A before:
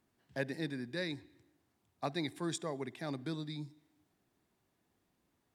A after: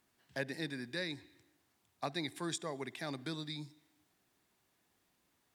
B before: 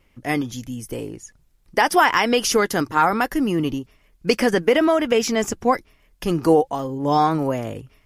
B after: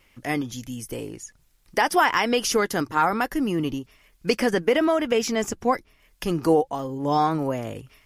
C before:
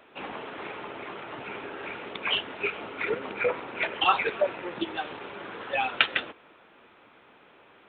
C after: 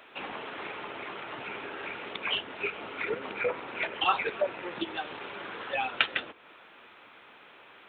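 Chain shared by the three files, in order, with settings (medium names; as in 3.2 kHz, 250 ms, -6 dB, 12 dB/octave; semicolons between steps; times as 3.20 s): tape noise reduction on one side only encoder only; trim -3.5 dB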